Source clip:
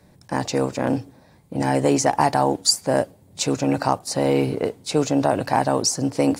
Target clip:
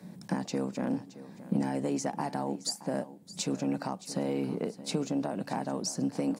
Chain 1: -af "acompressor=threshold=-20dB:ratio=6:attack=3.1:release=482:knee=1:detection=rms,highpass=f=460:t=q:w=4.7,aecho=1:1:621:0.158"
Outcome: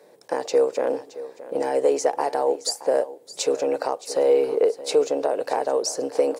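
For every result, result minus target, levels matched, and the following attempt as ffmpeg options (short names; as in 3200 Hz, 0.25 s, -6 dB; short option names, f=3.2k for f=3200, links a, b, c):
250 Hz band -13.0 dB; compressor: peak gain reduction -7 dB
-af "acompressor=threshold=-20dB:ratio=6:attack=3.1:release=482:knee=1:detection=rms,highpass=f=190:t=q:w=4.7,aecho=1:1:621:0.158"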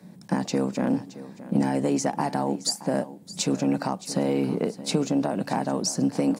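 compressor: peak gain reduction -7 dB
-af "acompressor=threshold=-28.5dB:ratio=6:attack=3.1:release=482:knee=1:detection=rms,highpass=f=190:t=q:w=4.7,aecho=1:1:621:0.158"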